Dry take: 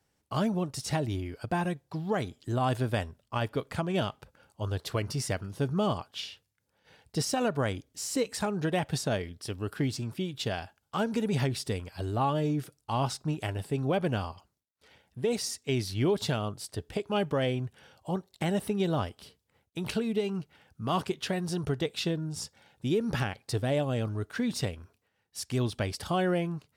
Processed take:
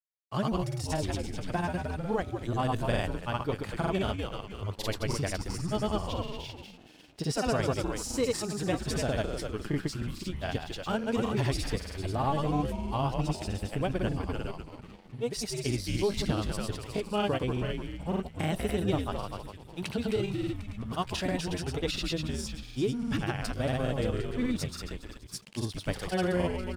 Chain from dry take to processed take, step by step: frequency-shifting echo 241 ms, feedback 50%, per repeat -96 Hz, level -4.5 dB; granulator, pitch spread up and down by 0 st; crossover distortion -56.5 dBFS

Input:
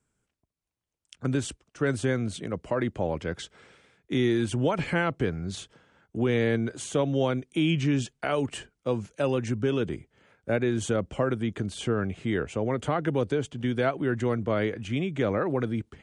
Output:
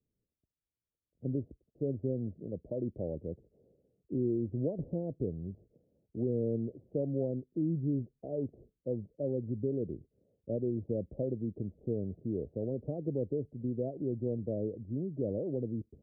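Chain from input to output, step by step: steep low-pass 600 Hz 48 dB/octave; trim -7 dB

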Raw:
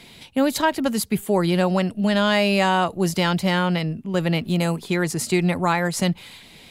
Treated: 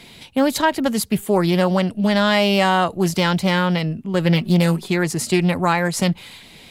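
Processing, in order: 4.24–4.88 s: comb 5.4 ms, depth 55%; loudspeaker Doppler distortion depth 0.19 ms; trim +2.5 dB

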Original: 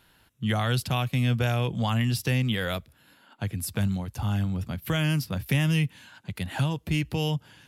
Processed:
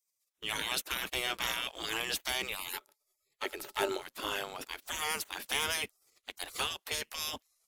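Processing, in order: spectral gate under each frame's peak -25 dB weak; waveshaping leveller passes 2; 2.73–4.02 s: small resonant body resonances 400/590/860/1300 Hz, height 13 dB

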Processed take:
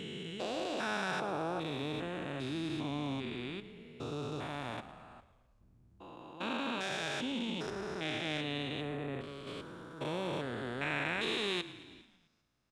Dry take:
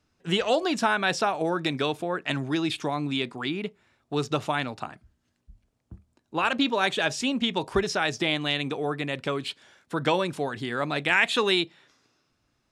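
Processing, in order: spectrogram pixelated in time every 400 ms; frequency-shifting echo 110 ms, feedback 61%, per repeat -32 Hz, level -16 dB; 7.70–9.47 s: three bands expanded up and down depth 70%; trim -6 dB

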